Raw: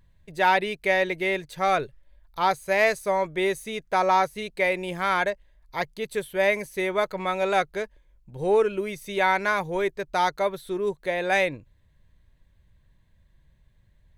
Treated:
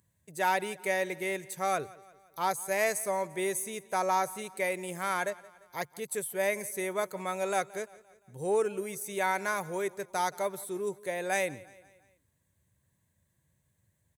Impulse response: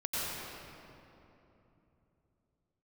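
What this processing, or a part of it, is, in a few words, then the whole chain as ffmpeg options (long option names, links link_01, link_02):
budget condenser microphone: -af "highpass=frequency=86:width=0.5412,highpass=frequency=86:width=1.3066,highshelf=frequency=5600:width_type=q:width=1.5:gain=13,aecho=1:1:173|346|519|692:0.0891|0.0446|0.0223|0.0111,volume=-7dB"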